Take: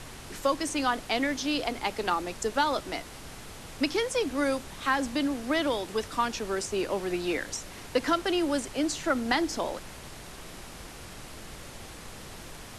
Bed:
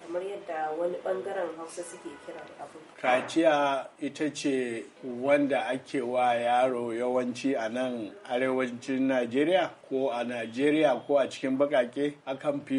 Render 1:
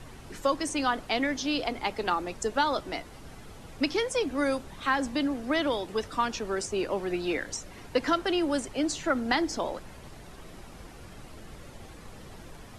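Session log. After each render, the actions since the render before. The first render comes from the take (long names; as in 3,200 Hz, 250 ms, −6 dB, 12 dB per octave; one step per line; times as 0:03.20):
broadband denoise 9 dB, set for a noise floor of −45 dBFS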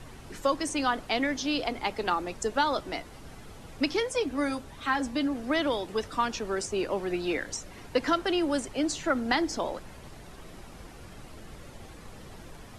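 0:04.00–0:05.36: notch comb filter 180 Hz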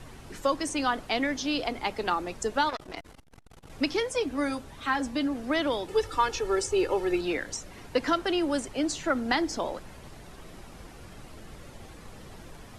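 0:02.69–0:03.70: saturating transformer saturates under 1,400 Hz
0:05.88–0:07.21: comb filter 2.3 ms, depth 92%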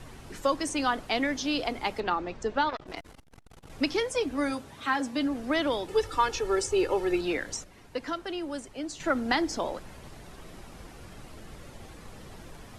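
0:02.00–0:02.87: high-frequency loss of the air 140 metres
0:04.51–0:05.16: high-pass filter 70 Hz → 160 Hz
0:07.64–0:09.00: clip gain −7.5 dB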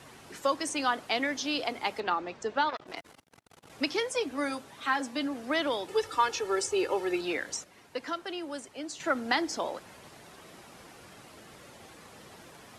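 high-pass filter 100 Hz 12 dB per octave
low-shelf EQ 300 Hz −8.5 dB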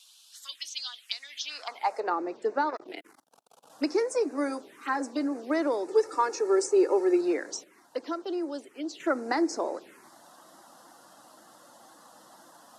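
high-pass filter sweep 3,500 Hz → 340 Hz, 0:01.24–0:02.18
phaser swept by the level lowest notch 290 Hz, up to 3,200 Hz, full sweep at −28 dBFS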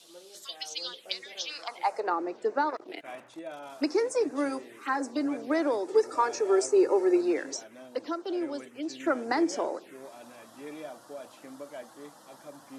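mix in bed −18 dB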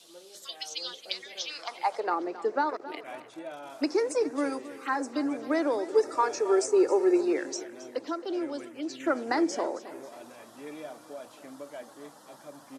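repeating echo 270 ms, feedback 43%, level −15.5 dB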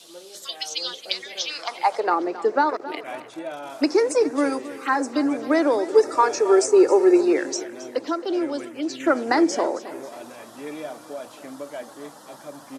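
level +7.5 dB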